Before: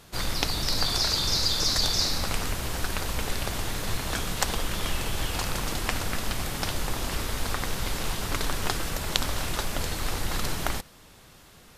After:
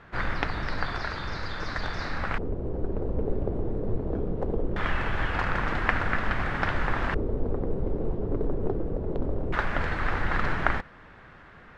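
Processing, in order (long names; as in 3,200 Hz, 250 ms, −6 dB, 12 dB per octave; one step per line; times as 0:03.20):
speech leveller 2 s
auto-filter low-pass square 0.21 Hz 430–1,700 Hz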